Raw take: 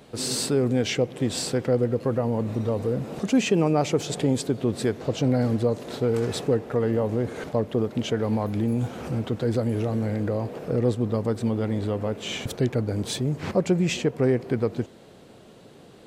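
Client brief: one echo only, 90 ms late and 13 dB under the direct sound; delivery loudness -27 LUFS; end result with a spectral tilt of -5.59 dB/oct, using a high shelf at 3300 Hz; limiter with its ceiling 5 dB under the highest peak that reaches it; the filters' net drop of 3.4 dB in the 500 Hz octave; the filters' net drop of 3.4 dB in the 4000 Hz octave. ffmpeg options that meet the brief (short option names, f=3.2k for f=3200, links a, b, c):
-af "equalizer=f=500:t=o:g=-4,highshelf=f=3.3k:g=4,equalizer=f=4k:t=o:g=-7.5,alimiter=limit=-17.5dB:level=0:latency=1,aecho=1:1:90:0.224,volume=1.5dB"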